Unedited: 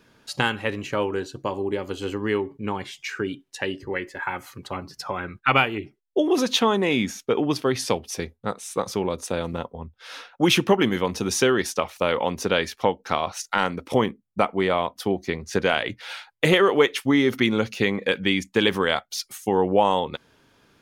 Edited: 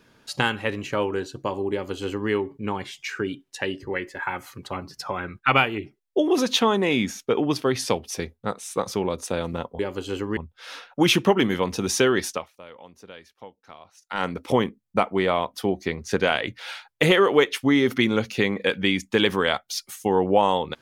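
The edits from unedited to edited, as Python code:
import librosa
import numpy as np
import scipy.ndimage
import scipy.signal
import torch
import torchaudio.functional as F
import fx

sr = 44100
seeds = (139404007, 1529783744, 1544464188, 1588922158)

y = fx.edit(x, sr, fx.duplicate(start_s=1.72, length_s=0.58, to_s=9.79),
    fx.fade_down_up(start_s=11.71, length_s=1.97, db=-21.5, fade_s=0.29, curve='qua'), tone=tone)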